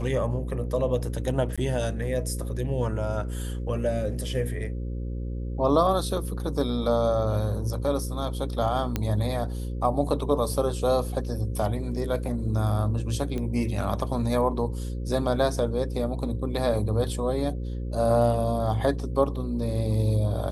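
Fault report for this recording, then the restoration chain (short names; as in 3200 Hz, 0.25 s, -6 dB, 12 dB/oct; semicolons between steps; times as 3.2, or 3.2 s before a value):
buzz 60 Hz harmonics 9 -31 dBFS
1.56–1.58 gap 16 ms
8.96 pop -12 dBFS
13.38 pop -20 dBFS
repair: de-click; de-hum 60 Hz, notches 9; interpolate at 1.56, 16 ms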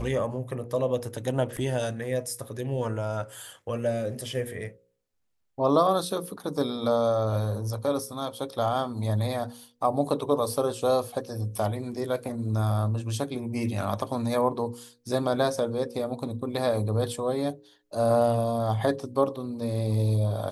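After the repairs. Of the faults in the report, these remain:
none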